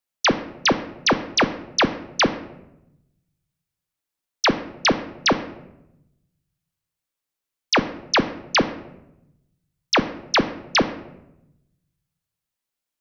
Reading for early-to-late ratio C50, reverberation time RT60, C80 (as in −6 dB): 13.0 dB, 0.90 s, 15.5 dB